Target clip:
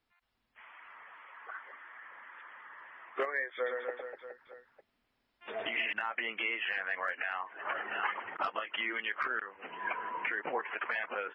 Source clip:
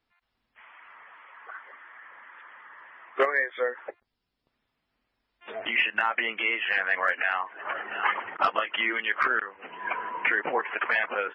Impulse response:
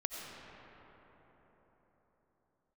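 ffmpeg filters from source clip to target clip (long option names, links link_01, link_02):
-filter_complex "[0:a]acompressor=threshold=-30dB:ratio=1.5,asettb=1/sr,asplit=3[link_01][link_02][link_03];[link_01]atrim=end=3.554[link_04];[link_02]atrim=start=3.55:end=5.93,asetpts=PTS-STARTPTS,afade=type=in:duration=0.004:curve=qsin,afade=type=out:start_time=2.376:duration=0.004:curve=qsin,aecho=1:1:110|247.5|419.4|634.2|902.8:0.631|0.398|0.251|0.158|0.1,atrim=end_sample=104958[link_05];[link_03]atrim=start=5.926[link_06];[link_04][link_05]acrossfade=duration=0.004:curve1=hsin:curve2=qsin[link_07];[link_07][link_06]acrossfade=duration=0.004:curve1=qsin:curve2=hsin,alimiter=limit=-20dB:level=0:latency=1:release=472,volume=-2.5dB"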